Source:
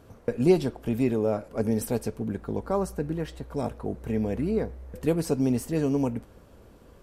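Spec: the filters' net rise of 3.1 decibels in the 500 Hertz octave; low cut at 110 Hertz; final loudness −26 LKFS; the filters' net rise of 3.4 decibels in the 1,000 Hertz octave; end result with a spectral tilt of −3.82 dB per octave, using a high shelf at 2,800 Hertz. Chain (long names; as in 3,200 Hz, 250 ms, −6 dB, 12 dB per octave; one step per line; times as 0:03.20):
high-pass filter 110 Hz
parametric band 500 Hz +3.5 dB
parametric band 1,000 Hz +4 dB
high-shelf EQ 2,800 Hz −7.5 dB
level +0.5 dB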